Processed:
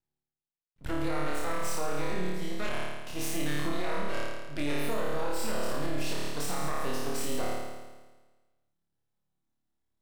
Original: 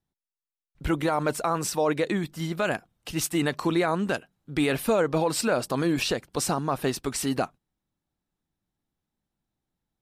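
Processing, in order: half-wave rectifier; flutter echo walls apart 4.7 m, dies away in 1.3 s; limiter -13 dBFS, peak gain reduction 6.5 dB; gain -6 dB

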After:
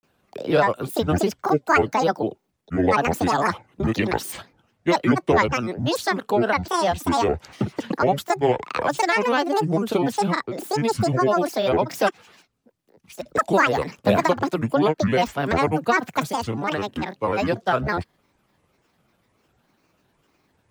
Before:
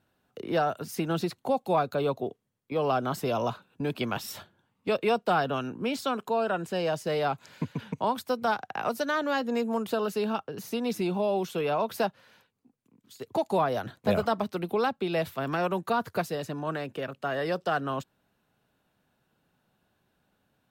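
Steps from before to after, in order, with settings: grains, spray 21 ms, pitch spread up and down by 12 st; gain +8.5 dB

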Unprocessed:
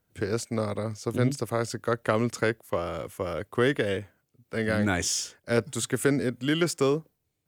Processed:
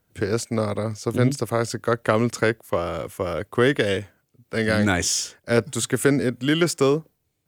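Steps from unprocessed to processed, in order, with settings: 3.72–4.92 dynamic EQ 5500 Hz, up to +7 dB, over -52 dBFS, Q 0.81; gain +5 dB

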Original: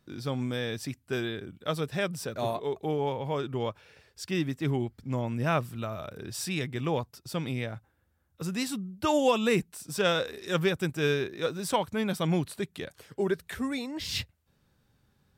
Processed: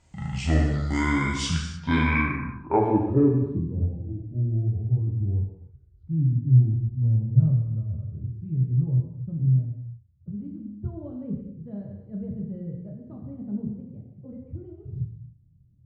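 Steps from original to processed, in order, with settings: speed glide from 54% -> 140%; low-pass sweep 7500 Hz -> 110 Hz, 1.42–3.9; non-linear reverb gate 0.34 s falling, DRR -1 dB; gain +5 dB

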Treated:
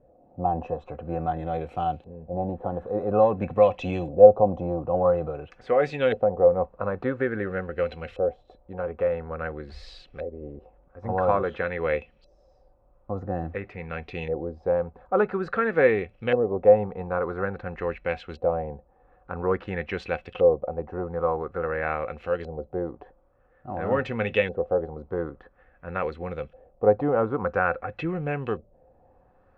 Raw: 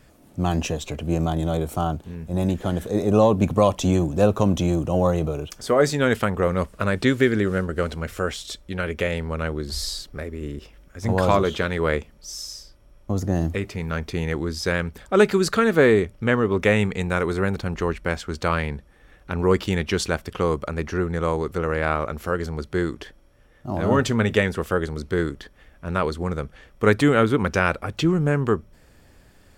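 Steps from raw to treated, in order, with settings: LFO low-pass saw up 0.49 Hz 580–3100 Hz; small resonant body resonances 520/740/2600/4000 Hz, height 14 dB, ringing for 70 ms; gain -10 dB

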